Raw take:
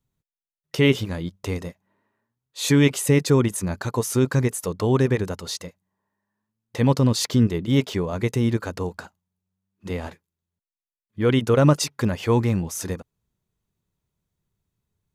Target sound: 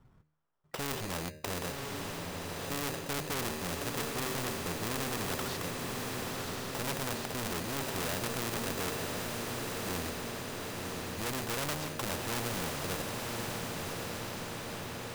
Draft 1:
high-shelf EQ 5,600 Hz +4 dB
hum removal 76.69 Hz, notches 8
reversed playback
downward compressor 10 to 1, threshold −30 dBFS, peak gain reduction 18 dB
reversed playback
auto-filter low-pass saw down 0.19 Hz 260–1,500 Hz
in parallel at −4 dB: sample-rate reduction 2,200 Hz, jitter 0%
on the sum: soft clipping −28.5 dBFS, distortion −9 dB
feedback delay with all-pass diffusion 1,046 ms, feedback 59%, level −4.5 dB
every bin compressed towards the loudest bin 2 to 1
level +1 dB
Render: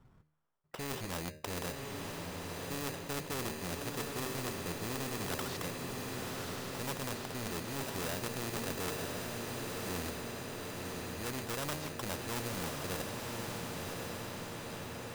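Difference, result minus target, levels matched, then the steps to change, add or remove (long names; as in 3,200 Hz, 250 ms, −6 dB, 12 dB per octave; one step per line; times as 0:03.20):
downward compressor: peak gain reduction +11 dB
change: downward compressor 10 to 1, threshold −18 dBFS, peak gain reduction 7 dB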